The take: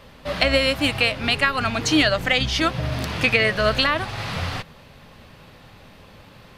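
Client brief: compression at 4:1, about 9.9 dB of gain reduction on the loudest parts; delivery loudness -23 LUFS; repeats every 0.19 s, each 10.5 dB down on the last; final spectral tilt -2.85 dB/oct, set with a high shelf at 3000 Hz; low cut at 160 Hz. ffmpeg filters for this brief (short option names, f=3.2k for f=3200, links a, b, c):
-af "highpass=160,highshelf=f=3k:g=4.5,acompressor=threshold=-25dB:ratio=4,aecho=1:1:190|380|570:0.299|0.0896|0.0269,volume=4dB"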